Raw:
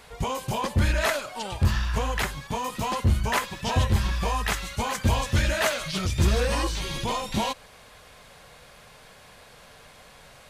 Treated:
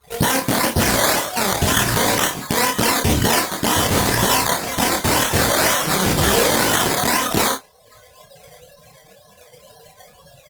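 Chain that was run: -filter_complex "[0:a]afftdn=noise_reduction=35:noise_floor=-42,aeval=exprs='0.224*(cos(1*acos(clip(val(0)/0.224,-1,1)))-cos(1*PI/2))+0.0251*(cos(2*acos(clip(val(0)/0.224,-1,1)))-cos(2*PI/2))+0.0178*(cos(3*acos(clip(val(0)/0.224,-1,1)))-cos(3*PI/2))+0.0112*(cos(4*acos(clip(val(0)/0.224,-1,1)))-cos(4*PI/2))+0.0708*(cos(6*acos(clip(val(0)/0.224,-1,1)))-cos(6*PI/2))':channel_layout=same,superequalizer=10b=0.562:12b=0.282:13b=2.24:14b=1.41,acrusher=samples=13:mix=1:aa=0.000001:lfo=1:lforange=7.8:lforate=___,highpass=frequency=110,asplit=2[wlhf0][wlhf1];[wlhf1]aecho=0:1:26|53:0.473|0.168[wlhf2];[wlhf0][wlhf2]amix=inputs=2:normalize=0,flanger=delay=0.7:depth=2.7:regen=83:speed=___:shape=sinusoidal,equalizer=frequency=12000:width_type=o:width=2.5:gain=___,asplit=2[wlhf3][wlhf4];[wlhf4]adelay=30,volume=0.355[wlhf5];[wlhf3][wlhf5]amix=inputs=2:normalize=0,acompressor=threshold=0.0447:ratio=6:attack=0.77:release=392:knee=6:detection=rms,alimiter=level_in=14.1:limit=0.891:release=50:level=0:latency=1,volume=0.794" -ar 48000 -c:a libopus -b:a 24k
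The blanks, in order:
2, 0.67, 9.5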